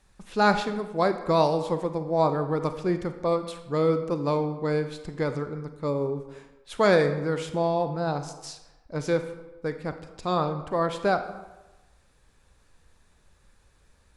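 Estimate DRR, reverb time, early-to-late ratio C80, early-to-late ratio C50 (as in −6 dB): 8.5 dB, 1.1 s, 12.0 dB, 10.0 dB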